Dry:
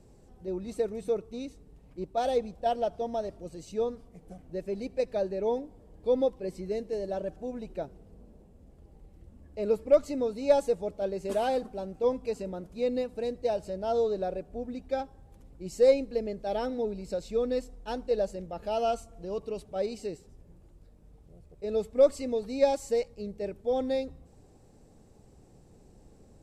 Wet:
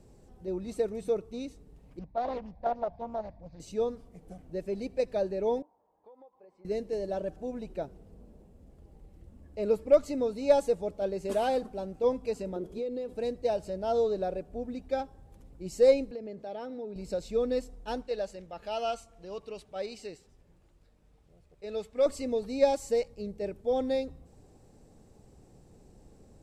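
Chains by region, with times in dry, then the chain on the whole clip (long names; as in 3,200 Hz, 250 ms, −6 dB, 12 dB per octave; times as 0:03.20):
0:01.99–0:03.60: high-frequency loss of the air 300 metres + phaser with its sweep stopped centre 2,000 Hz, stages 8 + highs frequency-modulated by the lows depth 0.48 ms
0:05.62–0:06.65: resonant band-pass 910 Hz, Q 4.1 + downward compressor 8 to 1, threshold −51 dBFS
0:12.56–0:13.13: downward compressor 8 to 1, threshold −37 dBFS + hollow resonant body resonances 390/3,300 Hz, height 15 dB, ringing for 30 ms
0:16.11–0:16.96: high-pass filter 130 Hz + high-shelf EQ 6,400 Hz −11.5 dB + downward compressor 2.5 to 1, threshold −39 dBFS
0:18.02–0:22.06: low-pass filter 2,200 Hz 6 dB per octave + tilt shelving filter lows −8.5 dB, about 1,100 Hz
whole clip: no processing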